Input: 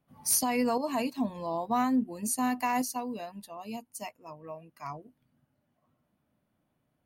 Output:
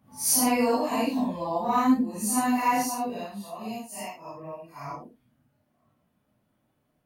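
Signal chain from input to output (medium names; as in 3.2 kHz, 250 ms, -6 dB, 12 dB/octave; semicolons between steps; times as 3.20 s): phase randomisation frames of 200 ms; trim +4.5 dB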